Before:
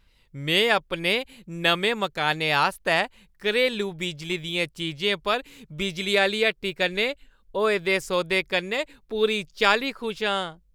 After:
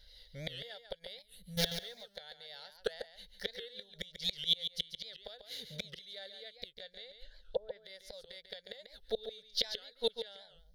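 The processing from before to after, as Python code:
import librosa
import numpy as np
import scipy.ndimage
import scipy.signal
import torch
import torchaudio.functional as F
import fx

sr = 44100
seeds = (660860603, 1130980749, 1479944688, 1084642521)

y = fx.zero_step(x, sr, step_db=-22.5, at=(1.57, 2.04))
y = fx.gate_flip(y, sr, shuts_db=-20.0, range_db=-30)
y = fx.highpass(y, sr, hz=89.0, slope=12, at=(5.36, 5.94))
y = fx.env_lowpass_down(y, sr, base_hz=850.0, full_db=-34.5, at=(6.72, 7.82))
y = fx.graphic_eq_10(y, sr, hz=(125, 250, 500, 1000, 4000, 8000), db=(-10, -6, 9, -10, 9, 11))
y = y + 10.0 ** (-9.0 / 20.0) * np.pad(y, (int(142 * sr / 1000.0), 0))[:len(y)]
y = fx.spec_box(y, sr, start_s=1.23, length_s=0.35, low_hz=200.0, high_hz=7600.0, gain_db=-14)
y = fx.fixed_phaser(y, sr, hz=1700.0, stages=8)
y = fx.record_warp(y, sr, rpm=78.0, depth_cents=160.0)
y = y * 10.0 ** (1.0 / 20.0)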